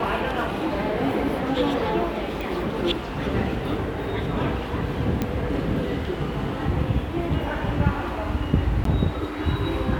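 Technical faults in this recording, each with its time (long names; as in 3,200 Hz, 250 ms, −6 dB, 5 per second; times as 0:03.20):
0:02.41: click
0:05.22: click −11 dBFS
0:08.84–0:08.85: drop-out 13 ms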